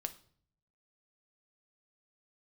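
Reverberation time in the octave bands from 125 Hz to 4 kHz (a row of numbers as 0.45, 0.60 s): 1.0, 0.80, 0.55, 0.50, 0.45, 0.45 s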